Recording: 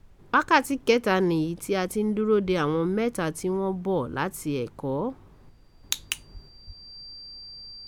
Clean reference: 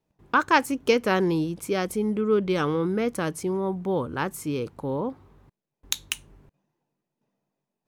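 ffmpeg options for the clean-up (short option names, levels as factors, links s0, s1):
-filter_complex "[0:a]bandreject=f=4700:w=30,asplit=3[s0][s1][s2];[s0]afade=t=out:st=2.45:d=0.02[s3];[s1]highpass=f=140:w=0.5412,highpass=f=140:w=1.3066,afade=t=in:st=2.45:d=0.02,afade=t=out:st=2.57:d=0.02[s4];[s2]afade=t=in:st=2.57:d=0.02[s5];[s3][s4][s5]amix=inputs=3:normalize=0,asplit=3[s6][s7][s8];[s6]afade=t=out:st=6.33:d=0.02[s9];[s7]highpass=f=140:w=0.5412,highpass=f=140:w=1.3066,afade=t=in:st=6.33:d=0.02,afade=t=out:st=6.45:d=0.02[s10];[s8]afade=t=in:st=6.45:d=0.02[s11];[s9][s10][s11]amix=inputs=3:normalize=0,asplit=3[s12][s13][s14];[s12]afade=t=out:st=6.66:d=0.02[s15];[s13]highpass=f=140:w=0.5412,highpass=f=140:w=1.3066,afade=t=in:st=6.66:d=0.02,afade=t=out:st=6.78:d=0.02[s16];[s14]afade=t=in:st=6.78:d=0.02[s17];[s15][s16][s17]amix=inputs=3:normalize=0,agate=range=0.0891:threshold=0.00708"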